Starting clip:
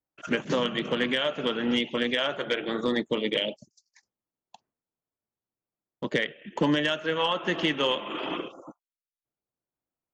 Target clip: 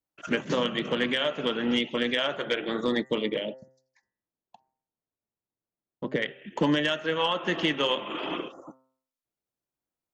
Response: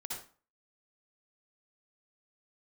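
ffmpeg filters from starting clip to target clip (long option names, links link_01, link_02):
-filter_complex "[0:a]asettb=1/sr,asplit=3[link_01][link_02][link_03];[link_01]atrim=end=3.264[link_04];[link_02]atrim=start=3.26:end=6.22,asetpts=PTS-STARTPTS,afade=type=in:duration=0.004:curve=qsin,afade=type=out:start_time=2.956:duration=0.004:curve=qsin,lowpass=frequency=1200:poles=1[link_05];[link_03]atrim=start=6.216[link_06];[link_04][link_05]acrossfade=duration=0.004:curve1=hsin:curve2=qsin[link_07];[link_07][link_06]acrossfade=duration=0.004:curve1=qsin:curve2=hsin,bandreject=frequency=131:width_type=h:width=4,bandreject=frequency=262:width_type=h:width=4,bandreject=frequency=393:width_type=h:width=4,bandreject=frequency=524:width_type=h:width=4,bandreject=frequency=655:width_type=h:width=4,bandreject=frequency=786:width_type=h:width=4,bandreject=frequency=917:width_type=h:width=4,bandreject=frequency=1048:width_type=h:width=4,bandreject=frequency=1179:width_type=h:width=4,bandreject=frequency=1310:width_type=h:width=4,bandreject=frequency=1441:width_type=h:width=4,bandreject=frequency=1572:width_type=h:width=4,bandreject=frequency=1703:width_type=h:width=4,bandreject=frequency=1834:width_type=h:width=4,bandreject=frequency=1965:width_type=h:width=4"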